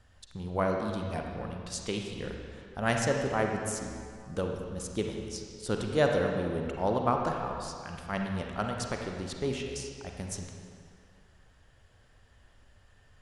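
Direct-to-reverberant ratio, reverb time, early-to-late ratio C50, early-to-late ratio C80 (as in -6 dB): 1.5 dB, 2.3 s, 2.5 dB, 3.5 dB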